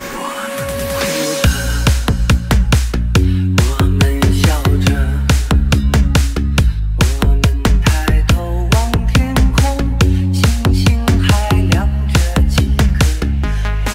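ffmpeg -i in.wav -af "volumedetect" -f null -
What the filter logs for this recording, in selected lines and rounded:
mean_volume: -12.6 dB
max_volume: -2.5 dB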